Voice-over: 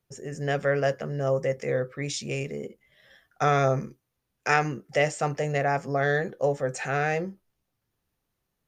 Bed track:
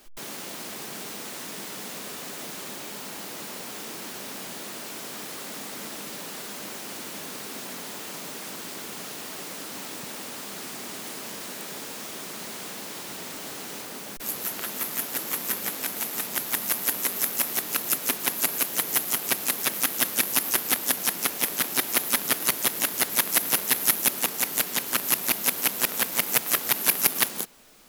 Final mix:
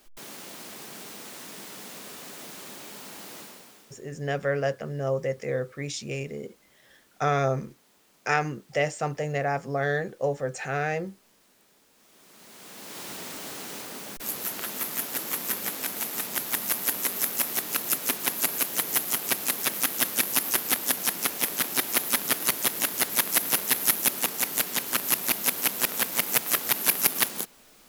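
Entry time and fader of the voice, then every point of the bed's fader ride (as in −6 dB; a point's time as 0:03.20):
3.80 s, −2.0 dB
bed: 0:03.38 −5 dB
0:04.10 −25.5 dB
0:11.91 −25.5 dB
0:13.03 −1 dB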